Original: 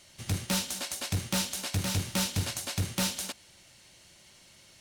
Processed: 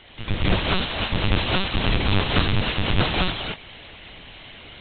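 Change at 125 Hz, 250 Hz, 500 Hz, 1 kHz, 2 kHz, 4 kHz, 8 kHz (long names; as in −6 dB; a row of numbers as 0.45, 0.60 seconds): +9.0 dB, +9.0 dB, +13.0 dB, +13.0 dB, +13.0 dB, +9.0 dB, below −40 dB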